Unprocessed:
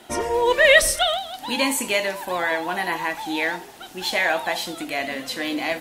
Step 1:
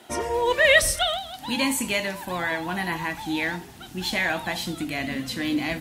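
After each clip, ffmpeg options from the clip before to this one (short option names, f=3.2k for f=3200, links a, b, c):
-af "asubboost=boost=9.5:cutoff=180,highpass=54,volume=-2.5dB"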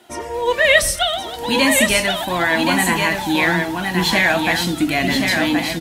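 -af "dynaudnorm=f=120:g=7:m=11dB,flanger=delay=2.7:depth=3.6:regen=71:speed=0.4:shape=triangular,aecho=1:1:1074:0.596,volume=3.5dB"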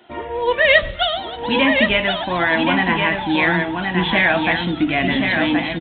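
-af "aresample=8000,aresample=44100"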